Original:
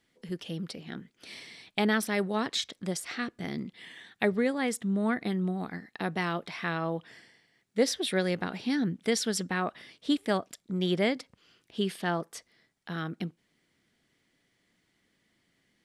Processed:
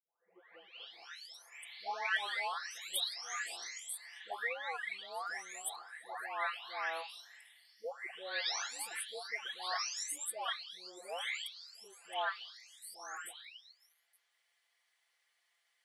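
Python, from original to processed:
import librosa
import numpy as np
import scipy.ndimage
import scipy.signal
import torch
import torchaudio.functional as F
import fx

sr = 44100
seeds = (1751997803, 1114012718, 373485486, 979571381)

y = fx.spec_delay(x, sr, highs='late', ms=930)
y = scipy.signal.sosfilt(scipy.signal.butter(4, 740.0, 'highpass', fs=sr, output='sos'), y)
y = y * librosa.db_to_amplitude(-1.0)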